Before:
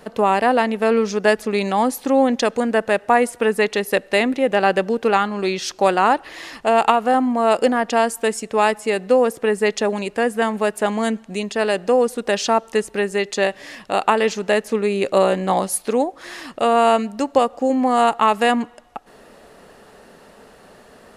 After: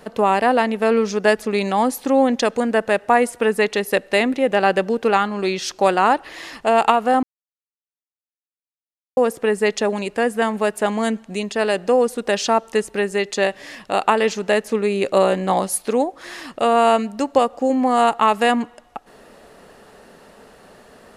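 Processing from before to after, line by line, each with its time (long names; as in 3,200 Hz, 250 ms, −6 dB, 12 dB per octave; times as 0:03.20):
0:07.23–0:09.17: silence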